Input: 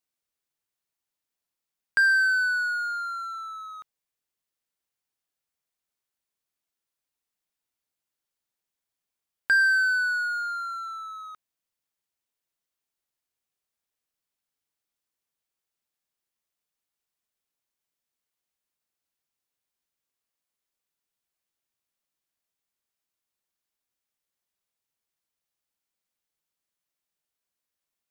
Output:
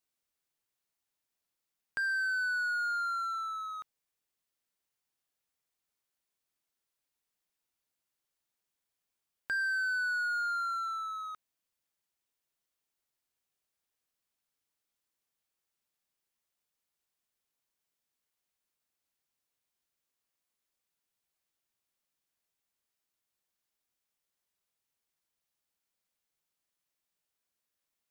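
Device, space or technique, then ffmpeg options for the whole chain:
de-esser from a sidechain: -filter_complex "[0:a]asplit=2[a][b];[b]highpass=f=6.2k:p=1,apad=whole_len=1239332[c];[a][c]sidechaincompress=threshold=-44dB:ratio=6:attack=1.2:release=53"

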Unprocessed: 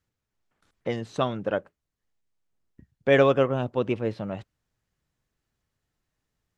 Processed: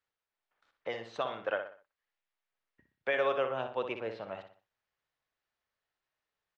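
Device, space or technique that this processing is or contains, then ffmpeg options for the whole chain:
DJ mixer with the lows and highs turned down: -filter_complex "[0:a]asettb=1/sr,asplit=3[a][b][c];[a]atrim=end=1.284[d];[b]atrim=start=1.28:end=3.15,asetpts=PTS-STARTPTS,afade=t=in:d=0.004:c=qsin,afade=t=out:st=1.866:d=0.004:c=qsin,equalizer=f=2k:t=o:w=1.8:g=5.5[e];[c]atrim=start=3.146[f];[d][e]acrossfade=d=0.004:c1=hsin:c2=qsin[g];[g][f]acrossfade=d=0.004:c1=qsin:c2=hsin,acrossover=split=480 5200:gain=0.112 1 0.0891[h][i][j];[h][i][j]amix=inputs=3:normalize=0,alimiter=limit=-17dB:level=0:latency=1:release=162,asplit=2[k][l];[l]adelay=61,lowpass=f=4.5k:p=1,volume=-7.5dB,asplit=2[m][n];[n]adelay=61,lowpass=f=4.5k:p=1,volume=0.39,asplit=2[o][p];[p]adelay=61,lowpass=f=4.5k:p=1,volume=0.39,asplit=2[q][r];[r]adelay=61,lowpass=f=4.5k:p=1,volume=0.39[s];[k][m][o][q][s]amix=inputs=5:normalize=0,volume=-3dB"

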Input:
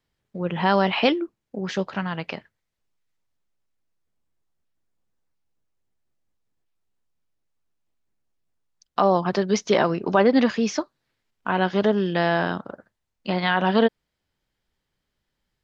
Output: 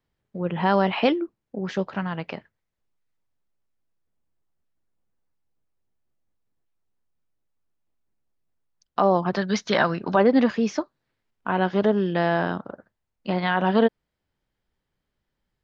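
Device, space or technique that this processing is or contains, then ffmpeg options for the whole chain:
behind a face mask: -filter_complex "[0:a]highshelf=f=2.5k:g=-8,asettb=1/sr,asplit=3[a][b][c];[a]atrim=end=9.364[d];[b]atrim=start=9.36:end=10.16,asetpts=PTS-STARTPTS,afade=t=in:d=0.004:c=qsin,afade=t=out:st=0.796:d=0.004:c=qsin,equalizer=f=400:t=o:w=0.67:g=-7,equalizer=f=1.6k:t=o:w=0.67:g=8,equalizer=f=4k:t=o:w=0.67:g=9[e];[c]atrim=start=10.156[f];[d][e]acrossfade=d=0.004:c1=hsin:c2=qsin[g];[g][f]acrossfade=d=0.004:c1=qsin:c2=hsin"

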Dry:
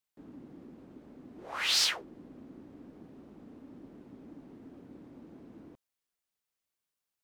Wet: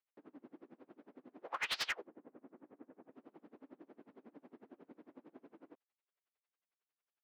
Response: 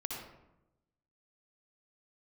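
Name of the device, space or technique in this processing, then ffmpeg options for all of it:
helicopter radio: -filter_complex "[0:a]asettb=1/sr,asplit=3[a][b][c];[a]atrim=end=2.074[d];[b]atrim=start=2.07:end=3.12,asetpts=PTS-STARTPTS,afade=t=in:d=0.004:c=qsin,afade=t=out:st=1.046:d=0.004:c=qsin,lowpass=2k[e];[c]atrim=start=3.116[f];[d][e]acrossfade=d=0.004:c1=hsin:c2=qsin[g];[g][f]acrossfade=d=0.004:c1=qsin:c2=hsin,highpass=380,lowpass=2.5k,aeval=exprs='val(0)*pow(10,-27*(0.5-0.5*cos(2*PI*11*n/s))/20)':c=same,asoftclip=type=hard:threshold=-35dB,volume=4dB"

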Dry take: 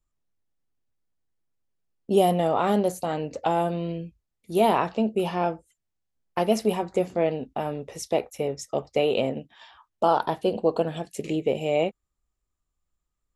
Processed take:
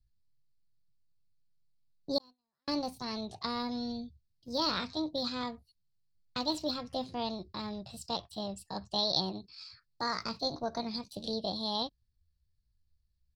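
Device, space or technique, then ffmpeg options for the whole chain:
chipmunk voice: -filter_complex "[0:a]asetrate=62367,aresample=44100,atempo=0.707107,firequalizer=gain_entry='entry(120,0);entry(290,-16);entry(770,-21);entry(1200,-21);entry(2100,-16);entry(3100,-12);entry(4400,3);entry(6300,-13);entry(13000,-26)':delay=0.05:min_phase=1,asettb=1/sr,asplit=3[a][b][c];[a]atrim=end=2.184[d];[b]atrim=start=2.18:end=2.68,asetpts=PTS-STARTPTS,afade=t=in:d=0.004:c=qsin,afade=t=out:st=0.496:d=0.004:c=qsin,agate=range=-54dB:threshold=-31dB:ratio=16:detection=peak[e];[c]atrim=start=2.676[f];[d][e]acrossfade=d=0.004:c1=hsin:c2=qsin[g];[g][f]acrossfade=d=0.004:c1=qsin:c2=hsin,volume=6dB"

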